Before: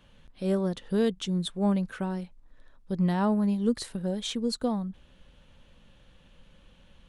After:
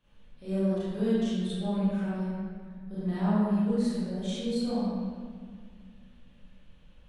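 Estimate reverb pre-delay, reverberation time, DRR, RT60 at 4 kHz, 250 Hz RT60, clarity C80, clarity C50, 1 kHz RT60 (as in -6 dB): 28 ms, 1.9 s, -12.5 dB, 1.3 s, 2.9 s, -2.5 dB, -6.0 dB, 1.8 s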